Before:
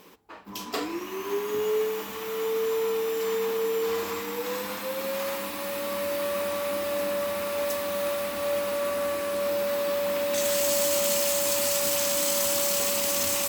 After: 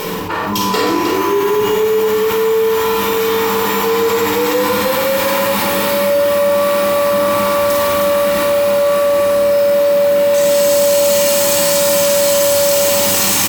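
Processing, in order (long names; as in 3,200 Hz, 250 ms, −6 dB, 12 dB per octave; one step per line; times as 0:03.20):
on a send: multi-tap delay 52/312 ms −4/−7 dB
on the sum: rectangular room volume 2,000 cubic metres, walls furnished, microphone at 4.5 metres
envelope flattener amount 70%
level +2 dB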